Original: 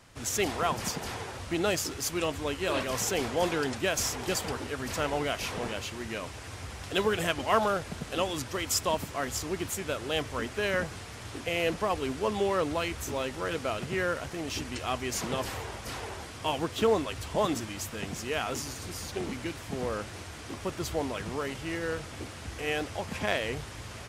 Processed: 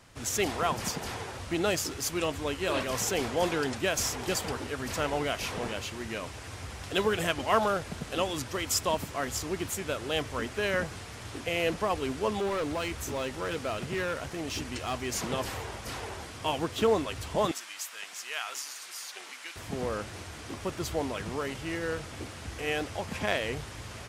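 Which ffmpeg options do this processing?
-filter_complex "[0:a]asettb=1/sr,asplit=3[a][b][c];[a]atrim=end=12.394[d];[b]atrim=start=12.39:end=15.11,asetpts=PTS-STARTPTS,afade=t=in:d=0.004:c=qsin,afade=t=out:st=2.716:d=0.004:c=qsin,volume=27dB,asoftclip=hard,volume=-27dB[e];[c]atrim=start=15.106[f];[d][e]acrossfade=d=0.004:c1=hsin:c2=qsin[g];[g][f]acrossfade=d=0.004:c1=qsin:c2=hsin,asettb=1/sr,asplit=3[h][i][j];[h]atrim=end=17.514[k];[i]atrim=start=17.51:end=19.56,asetpts=PTS-STARTPTS,afade=t=in:d=0.004:c=qsin,afade=t=out:st=2.046:d=0.004:c=qsin,highpass=1.2k[l];[j]atrim=start=19.556[m];[k][l]acrossfade=d=0.004:c1=hsin:c2=qsin[n];[n][m]acrossfade=d=0.004:c1=qsin:c2=hsin"

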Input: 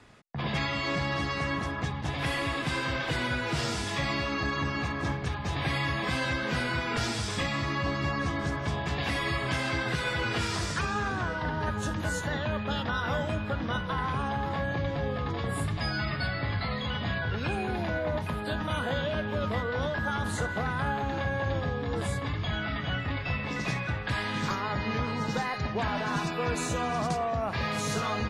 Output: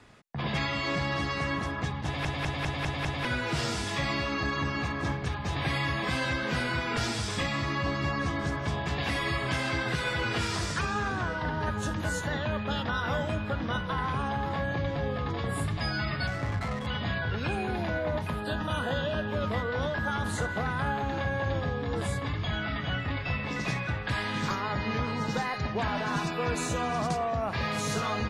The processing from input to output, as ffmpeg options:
-filter_complex "[0:a]asettb=1/sr,asplit=3[a][b][c];[a]atrim=end=16.274[d];[b]atrim=start=16.27:end=16.87,asetpts=PTS-STARTPTS,afade=t=in:d=0.004:c=qsin,afade=t=out:st=0.596:d=0.004:c=qsin,adynamicsmooth=sensitivity=5.5:basefreq=550[e];[c]atrim=start=16.866[f];[d][e]acrossfade=d=0.004:c1=hsin:c2=qsin[g];[g][f]acrossfade=d=0.004:c1=qsin:c2=hsin,asettb=1/sr,asplit=3[h][i][j];[h]atrim=end=18.394[k];[i]atrim=start=18.39:end=19.31,asetpts=PTS-STARTPTS,afade=t=in:d=0.004:c=qsin,afade=t=out:st=0.916:d=0.004:c=qsin,asuperstop=centerf=2200:order=4:qfactor=6[l];[j]atrim=start=19.306[m];[k][l]acrossfade=d=0.004:c1=hsin:c2=qsin[n];[n][m]acrossfade=d=0.004:c1=qsin:c2=hsin,asplit=7[o][p][q][r][s][t][u];[o]atrim=end=2.252[v];[p]atrim=start=2.048:end=2.252[w];[q]atrim=start=2.048:end=2.252[x];[r]atrim=start=2.048:end=2.252[y];[s]atrim=start=2.048:end=2.252[z];[t]atrim=start=2.048:end=2.252[aa];[u]atrim=start=3.248[ab];[v][w]acrossfade=d=0.004:c1=hsin:c2=hsin[ac];[ac][x]acrossfade=d=0.004:c1=hsin:c2=hsin[ad];[ad][y]acrossfade=d=0.004:c1=hsin:c2=hsin[ae];[ae][z]acrossfade=d=0.004:c1=hsin:c2=hsin[af];[af][aa]acrossfade=d=0.004:c1=hsin:c2=hsin[ag];[ag][ab]acrossfade=d=0.004:c1=hsin:c2=hsin"

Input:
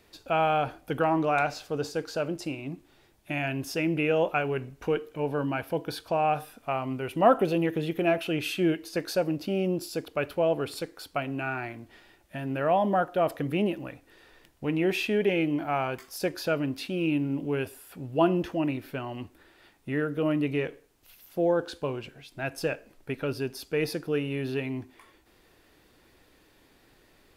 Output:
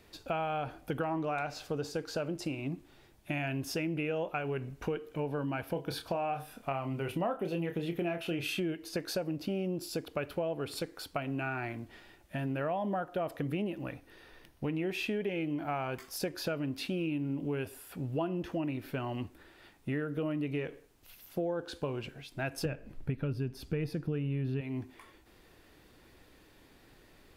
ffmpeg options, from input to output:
-filter_complex "[0:a]asettb=1/sr,asplit=3[a][b][c];[a]atrim=end=5.724[d];[b]atrim=start=5.72:end=8.6,asetpts=PTS-STARTPTS,afade=t=in:d=0.004:c=qsin,afade=t=out:st=2.876:d=0.004:c=qsin,asplit=2[e][f];[f]adelay=29,volume=-7.5dB[g];[e][g]amix=inputs=2:normalize=0,atrim=end_sample=127008[h];[c]atrim=start=8.596[i];[d][h]acrossfade=d=0.004:c1=hsin:c2=qsin[j];[j][i]acrossfade=d=0.004:c1=qsin:c2=hsin,asettb=1/sr,asplit=3[k][l][m];[k]atrim=end=13.824[n];[l]atrim=start=13.82:end=14.75,asetpts=PTS-STARTPTS,afade=t=in:d=0.004:c=qsin,afade=t=out:st=0.926:d=0.004:c=qsin,bandreject=f=7.4k:w=5.8[o];[m]atrim=start=14.746[p];[n][o]acrossfade=d=0.004:c1=hsin:c2=qsin[q];[q][p]acrossfade=d=0.004:c1=qsin:c2=hsin,asettb=1/sr,asplit=3[r][s][t];[r]atrim=end=22.654[u];[s]atrim=start=22.65:end=24.61,asetpts=PTS-STARTPTS,afade=t=in:d=0.004:c=qsin,afade=t=out:st=1.956:d=0.004:c=qsin,bass=f=250:g=13,treble=f=4k:g=-5[v];[t]atrim=start=24.606[w];[u][v]acrossfade=d=0.004:c1=hsin:c2=qsin[x];[x][w]acrossfade=d=0.004:c1=qsin:c2=hsin,bass=f=250:g=3,treble=f=4k:g=-1,acompressor=threshold=-31dB:ratio=6"

